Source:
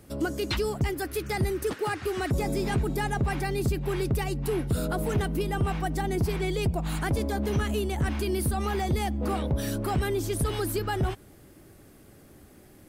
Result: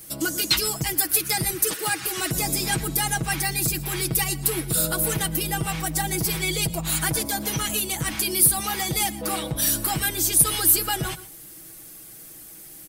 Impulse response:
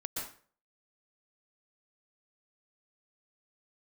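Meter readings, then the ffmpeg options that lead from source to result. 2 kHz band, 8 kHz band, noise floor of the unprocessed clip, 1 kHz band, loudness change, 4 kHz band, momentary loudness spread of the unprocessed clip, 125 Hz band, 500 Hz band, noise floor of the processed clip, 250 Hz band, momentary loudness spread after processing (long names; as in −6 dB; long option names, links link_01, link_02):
+6.5 dB, +19.0 dB, −53 dBFS, +2.5 dB, +6.5 dB, +12.0 dB, 2 LU, −2.0 dB, −4.0 dB, −43 dBFS, −1.0 dB, 21 LU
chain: -filter_complex "[0:a]aecho=1:1:6.2:0.86,crystalizer=i=8.5:c=0,asplit=2[link_01][link_02];[1:a]atrim=start_sample=2205,atrim=end_sample=6615,asetrate=48510,aresample=44100[link_03];[link_02][link_03]afir=irnorm=-1:irlink=0,volume=-13dB[link_04];[link_01][link_04]amix=inputs=2:normalize=0,volume=-5.5dB"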